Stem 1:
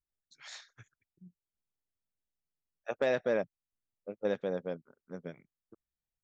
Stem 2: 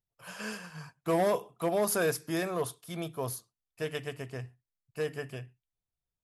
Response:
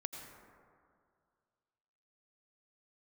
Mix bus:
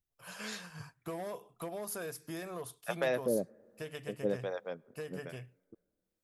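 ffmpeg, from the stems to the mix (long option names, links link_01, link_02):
-filter_complex "[0:a]acontrast=88,acrossover=split=550[link_01][link_02];[link_01]aeval=exprs='val(0)*(1-1/2+1/2*cos(2*PI*1.2*n/s))':channel_layout=same[link_03];[link_02]aeval=exprs='val(0)*(1-1/2-1/2*cos(2*PI*1.2*n/s))':channel_layout=same[link_04];[link_03][link_04]amix=inputs=2:normalize=0,volume=-4dB,asplit=2[link_05][link_06];[link_06]volume=-22dB[link_07];[1:a]acompressor=threshold=-36dB:ratio=4,highshelf=frequency=9600:gain=5,volume=-3.5dB[link_08];[2:a]atrim=start_sample=2205[link_09];[link_07][link_09]afir=irnorm=-1:irlink=0[link_10];[link_05][link_08][link_10]amix=inputs=3:normalize=0"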